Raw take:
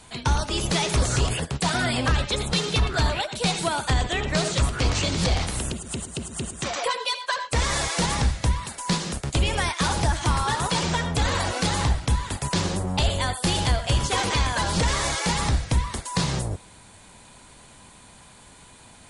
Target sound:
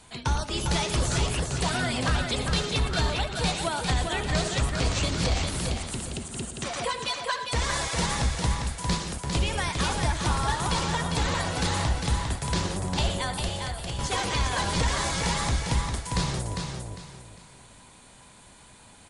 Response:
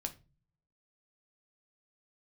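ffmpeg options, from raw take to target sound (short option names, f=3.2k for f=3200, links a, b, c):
-filter_complex "[0:a]asettb=1/sr,asplit=3[a][b][c];[a]atrim=end=13.434[d];[b]atrim=start=13.43:end=13.99,asetpts=PTS-STARTPTS,afade=t=in:d=0.004:c=qsin,afade=t=out:st=0.556:d=0.004:c=qsin,acompressor=threshold=-29dB:ratio=4[e];[c]atrim=start=13.986[f];[d][e]acrossfade=d=0.004:c1=hsin:c2=qsin[g];[g][f]acrossfade=d=0.004:c1=qsin:c2=hsin,asplit=2[h][i];[i]aecho=0:1:402|804|1206|1608:0.562|0.163|0.0473|0.0137[j];[h][j]amix=inputs=2:normalize=0,volume=-4dB"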